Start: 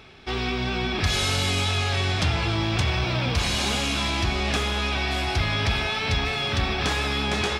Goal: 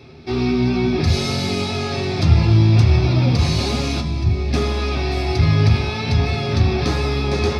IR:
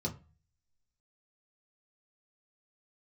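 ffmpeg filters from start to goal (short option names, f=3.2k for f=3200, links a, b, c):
-filter_complex "[0:a]asettb=1/sr,asplit=3[a][b][c];[a]atrim=end=4.004[d];[b]atrim=start=4:end=4.53,asetpts=PTS-STARTPTS,afade=t=in:d=0.004:c=qsin,afade=t=out:st=0.526:d=0.004:c=qsin,acrossover=split=240[e][f];[f]acompressor=threshold=-37dB:ratio=3[g];[e][g]amix=inputs=2:normalize=0[h];[c]atrim=start=4.526[i];[d][h]acrossfade=d=0.004:c1=hsin:c2=qsin[j];[j][i]acrossfade=d=0.004:c1=qsin:c2=hsin,asoftclip=type=tanh:threshold=-14dB[k];[1:a]atrim=start_sample=2205,atrim=end_sample=3528[l];[k][l]afir=irnorm=-1:irlink=0,volume=-1dB"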